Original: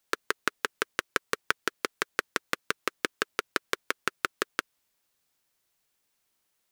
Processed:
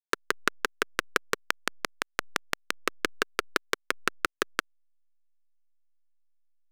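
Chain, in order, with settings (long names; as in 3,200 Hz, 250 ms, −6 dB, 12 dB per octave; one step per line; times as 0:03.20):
0:01.37–0:02.81: gate with flip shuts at −15 dBFS, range −29 dB
slack as between gear wheels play −32 dBFS
level +1.5 dB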